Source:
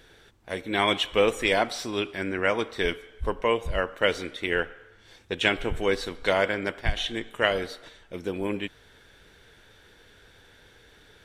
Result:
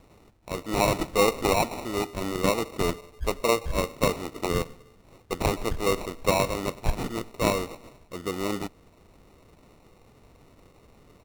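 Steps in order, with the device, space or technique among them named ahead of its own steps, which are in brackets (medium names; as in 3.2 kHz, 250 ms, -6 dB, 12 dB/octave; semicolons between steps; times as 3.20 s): crushed at another speed (playback speed 0.8×; sample-and-hold 34×; playback speed 1.25×)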